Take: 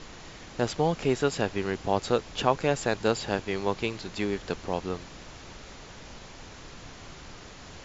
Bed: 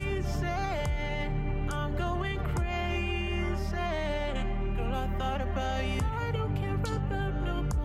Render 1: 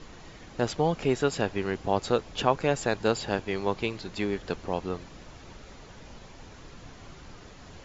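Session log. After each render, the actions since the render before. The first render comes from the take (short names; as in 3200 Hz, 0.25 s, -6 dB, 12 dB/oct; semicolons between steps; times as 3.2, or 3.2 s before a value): denoiser 6 dB, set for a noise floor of -46 dBFS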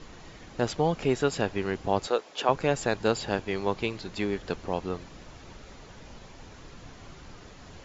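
2.07–2.49 Chebyshev high-pass 470 Hz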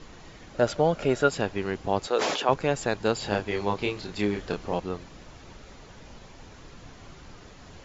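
0.54–1.3 small resonant body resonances 590/1400 Hz, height 11 dB, ringing for 30 ms; 2.14–2.54 sustainer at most 33 dB/s; 3.19–4.8 doubler 29 ms -3 dB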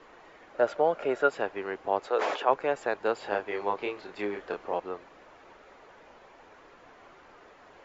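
three-band isolator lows -22 dB, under 350 Hz, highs -16 dB, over 2400 Hz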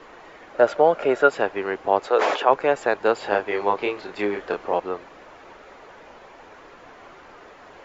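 gain +8 dB; limiter -3 dBFS, peak gain reduction 2 dB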